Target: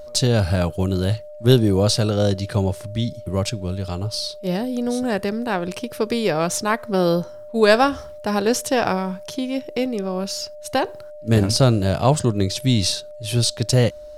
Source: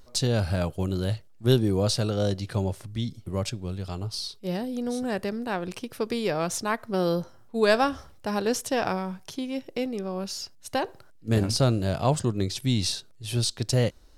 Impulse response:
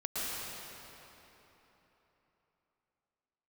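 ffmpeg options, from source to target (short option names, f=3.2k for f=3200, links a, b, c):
-af "aeval=exprs='val(0)+0.00794*sin(2*PI*600*n/s)':c=same,volume=6.5dB"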